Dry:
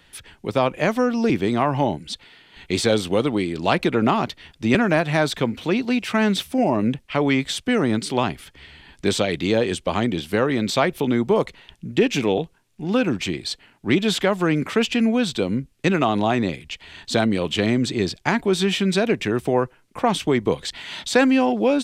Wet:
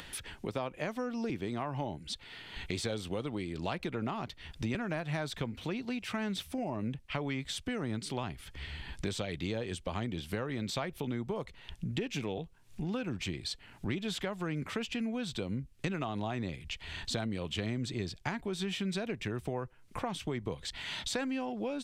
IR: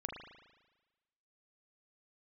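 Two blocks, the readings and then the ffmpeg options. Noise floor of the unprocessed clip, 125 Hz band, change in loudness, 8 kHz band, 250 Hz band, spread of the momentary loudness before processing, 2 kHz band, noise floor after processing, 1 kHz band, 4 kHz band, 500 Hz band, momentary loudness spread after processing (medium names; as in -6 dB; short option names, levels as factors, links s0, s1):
-57 dBFS, -11.0 dB, -15.5 dB, -12.0 dB, -15.5 dB, 8 LU, -15.0 dB, -56 dBFS, -16.5 dB, -12.5 dB, -17.0 dB, 5 LU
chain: -af "acompressor=threshold=0.0126:ratio=3,asubboost=boost=2.5:cutoff=150,acompressor=mode=upward:threshold=0.00794:ratio=2.5"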